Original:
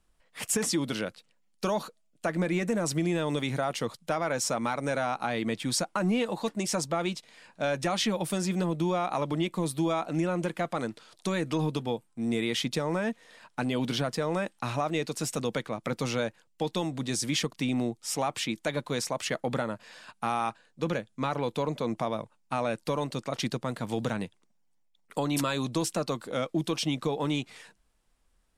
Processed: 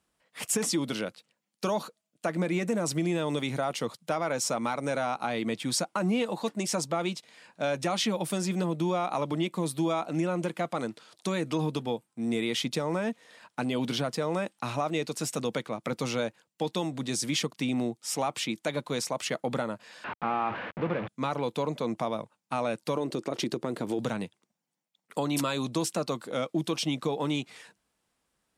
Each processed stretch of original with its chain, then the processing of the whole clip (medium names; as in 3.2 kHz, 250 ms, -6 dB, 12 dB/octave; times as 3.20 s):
20.04–21.08 s: one-bit delta coder 64 kbps, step -26.5 dBFS + low-pass 2.4 kHz 24 dB/octave
22.97–23.99 s: peaking EQ 360 Hz +13.5 dB 0.9 oct + compression, threshold -25 dBFS
whole clip: high-pass 120 Hz; dynamic bell 1.7 kHz, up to -4 dB, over -48 dBFS, Q 4.4